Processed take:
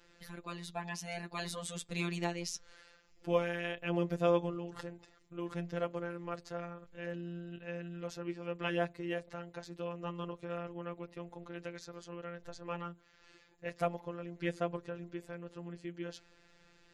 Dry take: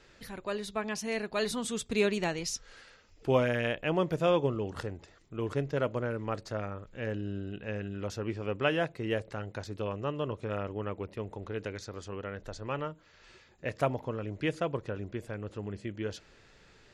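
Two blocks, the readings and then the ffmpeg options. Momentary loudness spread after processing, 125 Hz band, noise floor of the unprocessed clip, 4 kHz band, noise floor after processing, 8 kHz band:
13 LU, -6.5 dB, -60 dBFS, -6.0 dB, -65 dBFS, -5.5 dB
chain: -af "afftfilt=real='hypot(re,im)*cos(PI*b)':imag='0':win_size=1024:overlap=0.75,volume=-2dB"

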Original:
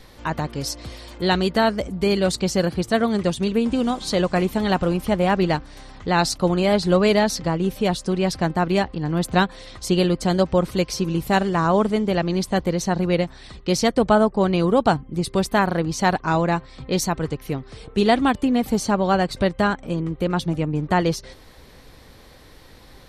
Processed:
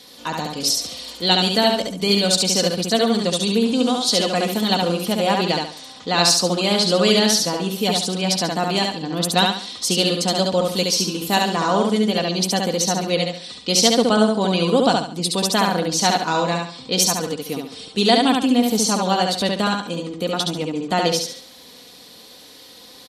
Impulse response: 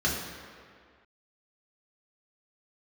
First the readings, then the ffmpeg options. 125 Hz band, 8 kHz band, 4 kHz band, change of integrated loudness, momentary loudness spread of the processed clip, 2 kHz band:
-3.0 dB, +10.5 dB, +11.0 dB, +2.5 dB, 9 LU, +1.0 dB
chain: -af "highpass=190,highshelf=f=2.6k:t=q:w=1.5:g=8,aecho=1:1:4.1:0.42,aecho=1:1:70|140|210|280:0.708|0.241|0.0818|0.0278,aresample=32000,aresample=44100,volume=-1dB"

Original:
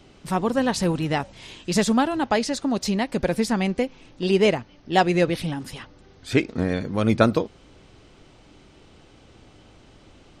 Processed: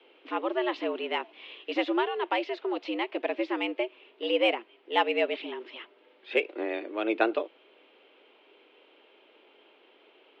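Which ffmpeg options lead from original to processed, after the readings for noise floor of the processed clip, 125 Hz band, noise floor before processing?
-61 dBFS, under -40 dB, -53 dBFS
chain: -af "bandreject=f=600:w=19,highpass=f=200:t=q:w=0.5412,highpass=f=200:t=q:w=1.307,lowpass=f=3.1k:t=q:w=0.5176,lowpass=f=3.1k:t=q:w=0.7071,lowpass=f=3.1k:t=q:w=1.932,afreqshift=110,aexciter=amount=2.2:drive=5.7:freq=2.3k,volume=-6.5dB"

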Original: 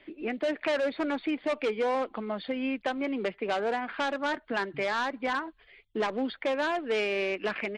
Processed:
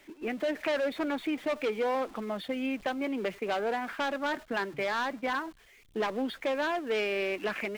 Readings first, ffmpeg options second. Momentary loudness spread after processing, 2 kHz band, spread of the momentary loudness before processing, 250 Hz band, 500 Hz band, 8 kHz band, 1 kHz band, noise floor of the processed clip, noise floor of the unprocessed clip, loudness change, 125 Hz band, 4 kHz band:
4 LU, -1.5 dB, 4 LU, -1.0 dB, -1.5 dB, +0.5 dB, -1.5 dB, -59 dBFS, -61 dBFS, -1.5 dB, -1.0 dB, -1.0 dB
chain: -af "aeval=exprs='val(0)+0.5*0.00668*sgn(val(0))':c=same,agate=range=-10dB:threshold=-38dB:ratio=16:detection=peak,volume=-2dB"

